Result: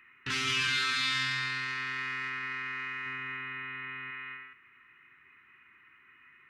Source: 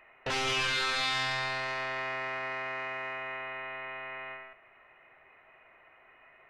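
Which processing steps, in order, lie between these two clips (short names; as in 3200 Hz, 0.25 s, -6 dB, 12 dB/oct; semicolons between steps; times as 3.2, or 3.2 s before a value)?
Chebyshev band-stop 280–1400 Hz, order 2; 1.85–2.28 high shelf 11000 Hz -> 7600 Hz +8 dB; HPF 69 Hz; 3.06–4.11 low shelf 390 Hz +7 dB; gain +1.5 dB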